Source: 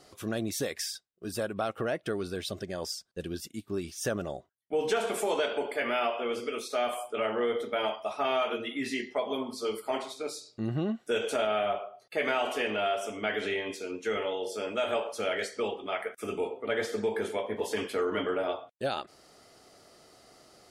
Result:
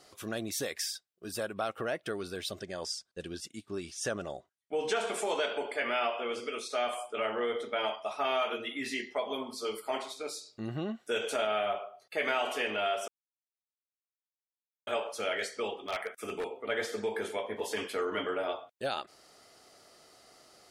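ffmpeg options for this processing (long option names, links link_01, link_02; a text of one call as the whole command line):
ffmpeg -i in.wav -filter_complex "[0:a]asettb=1/sr,asplit=3[link_01][link_02][link_03];[link_01]atrim=end=2.604[link_04];[link_02]atrim=start=2.6:end=8.11,asetpts=PTS-STARTPTS,afade=type=in:duration=0.004:curve=qsin,afade=type=out:start_time=5.506:duration=0.004:curve=qsin,lowpass=frequency=10000:width=0.5412,lowpass=frequency=10000:width=1.3066[link_05];[link_03]atrim=start=8.106[link_06];[link_04][link_05]acrossfade=duration=0.004:curve1=hsin:curve2=qsin[link_07];[link_07][link_06]acrossfade=duration=0.004:curve1=qsin:curve2=hsin,asettb=1/sr,asplit=3[link_08][link_09][link_10];[link_08]atrim=end=15.764[link_11];[link_09]atrim=start=15.76:end=16.45,asetpts=PTS-STARTPTS,afade=type=in:duration=0.004:curve=qsin,afade=type=out:start_time=0.686:duration=0.004:curve=qsin,aeval=exprs='0.0562*(abs(mod(val(0)/0.0562+3,4)-2)-1)':channel_layout=same[link_12];[link_10]atrim=start=16.446[link_13];[link_11][link_12]acrossfade=duration=0.004:curve1=hsin:curve2=qsin[link_14];[link_14][link_13]acrossfade=duration=0.004:curve1=qsin:curve2=hsin,asplit=3[link_15][link_16][link_17];[link_15]atrim=end=13.08,asetpts=PTS-STARTPTS,afade=type=out:start_time=13.076:duration=0.004:curve=hsin[link_18];[link_16]atrim=start=13.08:end=14.87,asetpts=PTS-STARTPTS,volume=0[link_19];[link_17]atrim=start=14.87,asetpts=PTS-STARTPTS,afade=type=in:duration=0.004:curve=hsin[link_20];[link_18][link_19][link_20]concat=n=3:v=0:a=1,lowshelf=frequency=470:gain=-7" out.wav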